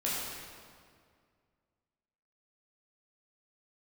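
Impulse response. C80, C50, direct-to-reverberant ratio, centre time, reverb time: 0.0 dB, -1.5 dB, -7.5 dB, 0.122 s, 2.1 s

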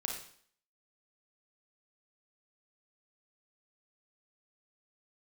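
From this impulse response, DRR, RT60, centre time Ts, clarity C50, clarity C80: 0.5 dB, 0.55 s, 33 ms, 4.0 dB, 8.0 dB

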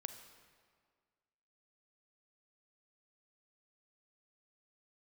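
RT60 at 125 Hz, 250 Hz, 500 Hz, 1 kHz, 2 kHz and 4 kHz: 1.8, 1.9, 1.8, 1.8, 1.6, 1.3 s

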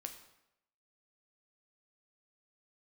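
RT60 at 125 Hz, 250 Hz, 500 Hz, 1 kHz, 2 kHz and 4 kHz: 0.80, 0.80, 0.85, 0.85, 0.80, 0.70 s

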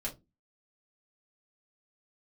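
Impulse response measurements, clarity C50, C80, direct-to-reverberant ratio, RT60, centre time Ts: 14.5 dB, 24.0 dB, -4.0 dB, 0.20 s, 14 ms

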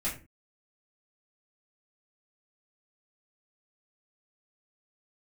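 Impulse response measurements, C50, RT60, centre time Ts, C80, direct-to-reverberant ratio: 9.0 dB, 0.35 s, 25 ms, 14.5 dB, -8.5 dB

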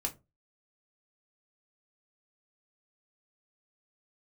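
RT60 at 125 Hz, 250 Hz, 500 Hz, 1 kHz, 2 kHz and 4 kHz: 0.35, 0.30, 0.30, 0.20, 0.15, 0.15 s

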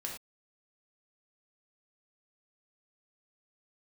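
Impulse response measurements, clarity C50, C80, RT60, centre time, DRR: 4.5 dB, 8.5 dB, not exponential, 30 ms, -1.5 dB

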